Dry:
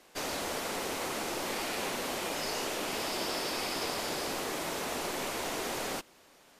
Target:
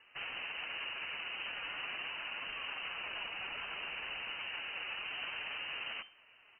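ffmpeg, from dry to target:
ffmpeg -i in.wav -filter_complex "[0:a]alimiter=level_in=5.5dB:limit=-24dB:level=0:latency=1:release=50,volume=-5.5dB,flanger=delay=3.1:depth=2.1:regen=-27:speed=0.61:shape=triangular,asetrate=30296,aresample=44100,atempo=1.45565,asplit=2[link_01][link_02];[link_02]aecho=0:1:75:0.1[link_03];[link_01][link_03]amix=inputs=2:normalize=0,lowpass=frequency=2600:width_type=q:width=0.5098,lowpass=frequency=2600:width_type=q:width=0.6013,lowpass=frequency=2600:width_type=q:width=0.9,lowpass=frequency=2600:width_type=q:width=2.563,afreqshift=-3100,volume=2dB" out.wav

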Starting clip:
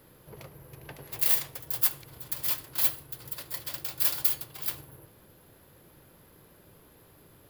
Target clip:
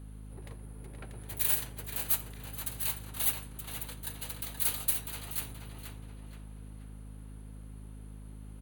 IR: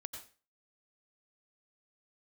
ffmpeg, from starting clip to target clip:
-filter_complex "[0:a]bandreject=frequency=6200:width=5.3,asplit=2[link_01][link_02];[link_02]adelay=414,lowpass=frequency=4300:poles=1,volume=-4.5dB,asplit=2[link_03][link_04];[link_04]adelay=414,lowpass=frequency=4300:poles=1,volume=0.44,asplit=2[link_05][link_06];[link_06]adelay=414,lowpass=frequency=4300:poles=1,volume=0.44,asplit=2[link_07][link_08];[link_08]adelay=414,lowpass=frequency=4300:poles=1,volume=0.44,asplit=2[link_09][link_10];[link_10]adelay=414,lowpass=frequency=4300:poles=1,volume=0.44[link_11];[link_03][link_05][link_07][link_09][link_11]amix=inputs=5:normalize=0[link_12];[link_01][link_12]amix=inputs=2:normalize=0,aeval=exprs='val(0)+0.01*(sin(2*PI*60*n/s)+sin(2*PI*2*60*n/s)/2+sin(2*PI*3*60*n/s)/3+sin(2*PI*4*60*n/s)/4+sin(2*PI*5*60*n/s)/5)':channel_layout=same,asetrate=38367,aresample=44100,volume=-4.5dB"

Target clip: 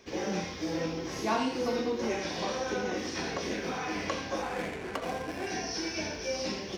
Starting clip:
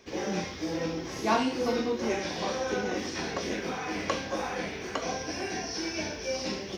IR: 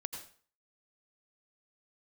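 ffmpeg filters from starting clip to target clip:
-filter_complex "[0:a]asplit=2[link_01][link_02];[link_02]alimiter=limit=-24dB:level=0:latency=1:release=282,volume=1dB[link_03];[link_01][link_03]amix=inputs=2:normalize=0,asettb=1/sr,asplit=3[link_04][link_05][link_06];[link_04]atrim=end=4.424[link_07];[link_05]atrim=start=4.42:end=5.47,asetpts=PTS-STARTPTS,afade=type=in:duration=0.004:curve=qsin,afade=type=out:start_time=1.046:duration=0.004:curve=qsin,adynamicsmooth=sensitivity=6:basefreq=630[link_08];[link_06]atrim=start=5.466[link_09];[link_07][link_08]acrossfade=duration=0.004:curve1=hsin:curve2=qsin[link_10];[link_10][link_09]acrossfade=duration=0.004:curve1=qsin:curve2=hsin[link_11];[1:a]atrim=start_sample=2205,atrim=end_sample=3969[link_12];[link_11][link_12]afir=irnorm=-1:irlink=0,volume=-4.5dB"

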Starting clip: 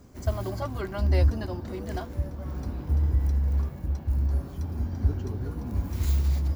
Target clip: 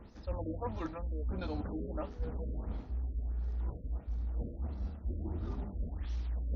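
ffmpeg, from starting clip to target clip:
ffmpeg -i in.wav -filter_complex "[0:a]acrossover=split=8700[link_01][link_02];[link_02]acompressor=threshold=-55dB:ratio=4:attack=1:release=60[link_03];[link_01][link_03]amix=inputs=2:normalize=0,equalizer=frequency=160:width=1.1:gain=-8,areverse,acompressor=threshold=-37dB:ratio=16,areverse,asetrate=37084,aresample=44100,atempo=1.18921,afftfilt=real='re*lt(b*sr/1024,610*pow(7300/610,0.5+0.5*sin(2*PI*1.5*pts/sr)))':imag='im*lt(b*sr/1024,610*pow(7300/610,0.5+0.5*sin(2*PI*1.5*pts/sr)))':win_size=1024:overlap=0.75,volume=4dB" out.wav

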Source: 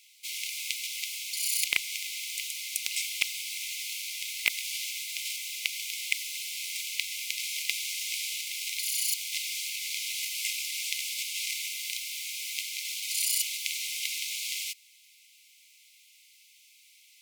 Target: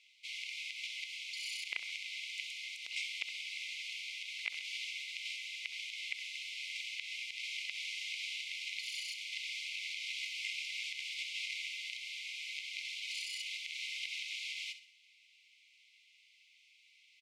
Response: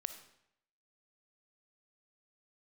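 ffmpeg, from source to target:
-af "alimiter=limit=-18dB:level=0:latency=1:release=83,highpass=250,lowpass=3000,aecho=1:1:65|130|195|260:0.251|0.111|0.0486|0.0214,volume=-1dB"

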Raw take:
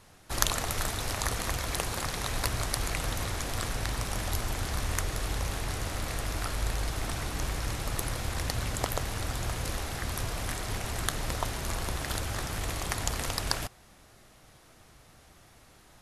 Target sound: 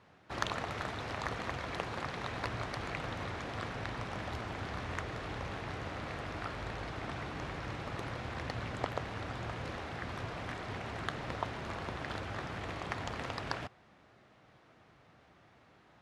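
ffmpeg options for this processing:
ffmpeg -i in.wav -af "highpass=110,lowpass=2700,volume=-3dB" out.wav

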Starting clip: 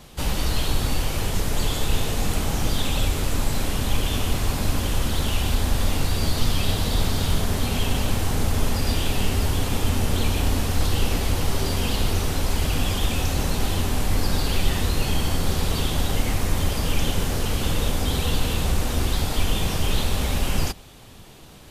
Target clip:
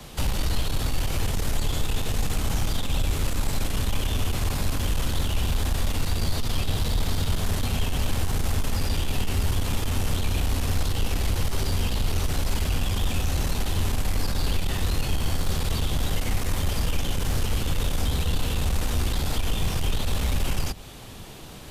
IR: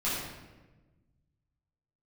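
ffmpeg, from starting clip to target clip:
-filter_complex "[0:a]acrossover=split=150|320|1000[link_01][link_02][link_03][link_04];[link_01]acompressor=threshold=-22dB:ratio=4[link_05];[link_02]acompressor=threshold=-43dB:ratio=4[link_06];[link_03]acompressor=threshold=-42dB:ratio=4[link_07];[link_04]acompressor=threshold=-36dB:ratio=4[link_08];[link_05][link_06][link_07][link_08]amix=inputs=4:normalize=0,aeval=exprs='(tanh(11.2*val(0)+0.2)-tanh(0.2))/11.2':channel_layout=same,volume=4.5dB"

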